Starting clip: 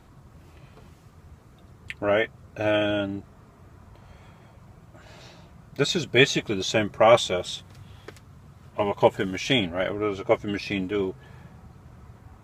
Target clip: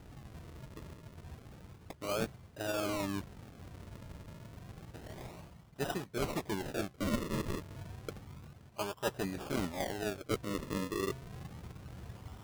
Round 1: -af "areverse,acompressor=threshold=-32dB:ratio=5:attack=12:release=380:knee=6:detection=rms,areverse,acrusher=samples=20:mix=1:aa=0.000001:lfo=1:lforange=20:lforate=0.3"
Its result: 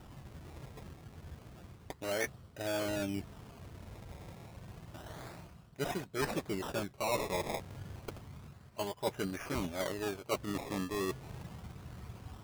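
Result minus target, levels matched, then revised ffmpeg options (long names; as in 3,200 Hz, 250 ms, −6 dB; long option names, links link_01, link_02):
sample-and-hold swept by an LFO: distortion −6 dB
-af "areverse,acompressor=threshold=-32dB:ratio=5:attack=12:release=380:knee=6:detection=rms,areverse,acrusher=samples=39:mix=1:aa=0.000001:lfo=1:lforange=39:lforate=0.3"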